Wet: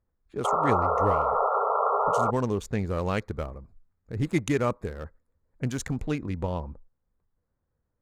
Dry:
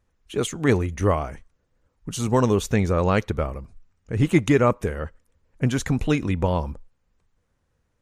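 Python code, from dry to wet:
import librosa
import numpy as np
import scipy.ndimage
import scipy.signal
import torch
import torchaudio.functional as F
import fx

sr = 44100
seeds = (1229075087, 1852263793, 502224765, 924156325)

y = fx.wiener(x, sr, points=15)
y = fx.spec_paint(y, sr, seeds[0], shape='noise', start_s=0.44, length_s=1.87, low_hz=400.0, high_hz=1400.0, level_db=-17.0)
y = fx.high_shelf(y, sr, hz=3800.0, db=8.5, at=(2.84, 6.05))
y = y * 10.0 ** (-7.5 / 20.0)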